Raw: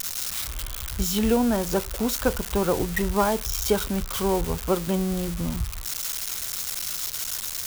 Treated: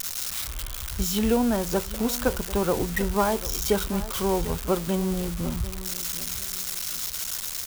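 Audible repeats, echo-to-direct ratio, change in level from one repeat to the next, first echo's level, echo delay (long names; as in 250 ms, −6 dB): 2, −14.5 dB, −11.0 dB, −15.0 dB, 745 ms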